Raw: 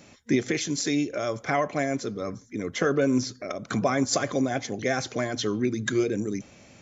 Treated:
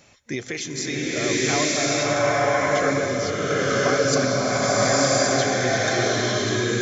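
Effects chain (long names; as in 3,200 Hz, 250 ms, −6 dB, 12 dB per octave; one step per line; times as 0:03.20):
parametric band 250 Hz −9 dB 1.5 octaves
slow-attack reverb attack 1,060 ms, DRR −9 dB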